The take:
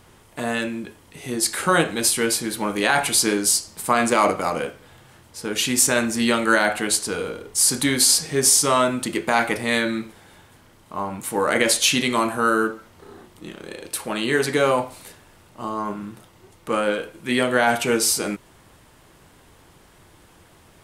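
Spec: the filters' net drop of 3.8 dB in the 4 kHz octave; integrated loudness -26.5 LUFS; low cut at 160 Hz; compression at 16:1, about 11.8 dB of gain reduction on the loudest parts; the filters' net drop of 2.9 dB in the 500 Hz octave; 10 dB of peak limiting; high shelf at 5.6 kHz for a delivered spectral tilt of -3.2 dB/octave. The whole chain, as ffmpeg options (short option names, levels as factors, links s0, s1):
-af "highpass=160,equalizer=f=500:t=o:g=-3.5,equalizer=f=4000:t=o:g=-8.5,highshelf=f=5600:g=7,acompressor=threshold=0.0891:ratio=16,volume=1.33,alimiter=limit=0.168:level=0:latency=1"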